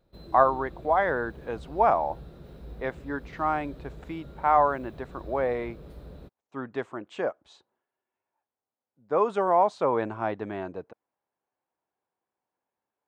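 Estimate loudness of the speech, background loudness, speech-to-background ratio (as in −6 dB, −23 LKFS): −27.0 LKFS, −46.5 LKFS, 19.5 dB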